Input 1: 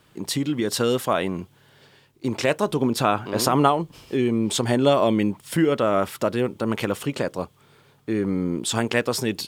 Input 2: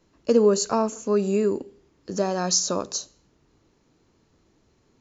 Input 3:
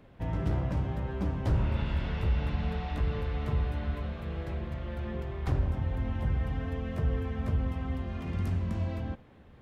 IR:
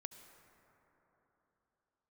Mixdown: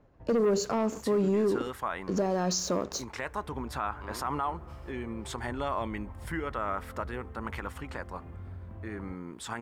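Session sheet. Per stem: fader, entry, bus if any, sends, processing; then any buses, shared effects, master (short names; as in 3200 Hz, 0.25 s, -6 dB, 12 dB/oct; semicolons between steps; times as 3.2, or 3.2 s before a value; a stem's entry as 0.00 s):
-17.5 dB, 0.75 s, send -13 dB, band shelf 1300 Hz +11 dB
-3.0 dB, 0.00 s, no send, LPF 1600 Hz 6 dB/oct; sample leveller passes 2
-3.5 dB, 0.00 s, no send, LPF 1400 Hz 12 dB/oct; bell 190 Hz -8 dB; compressor 2.5:1, threshold -40 dBFS, peak gain reduction 12 dB; auto duck -11 dB, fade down 0.45 s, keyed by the second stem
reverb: on, RT60 3.7 s, pre-delay 62 ms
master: limiter -20.5 dBFS, peak gain reduction 9.5 dB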